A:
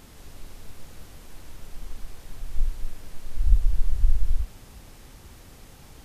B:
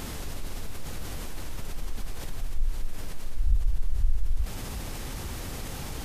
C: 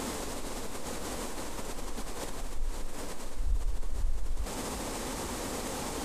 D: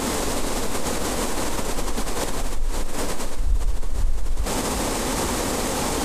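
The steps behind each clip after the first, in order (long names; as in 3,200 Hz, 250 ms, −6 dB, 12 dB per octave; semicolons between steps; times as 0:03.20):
envelope flattener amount 50%; level −6.5 dB
octave-band graphic EQ 125/250/500/1,000/2,000/4,000/8,000 Hz −4/+10/+10/+10/+4/+4/+11 dB; level −6.5 dB
camcorder AGC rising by 73 dB per second; level +8.5 dB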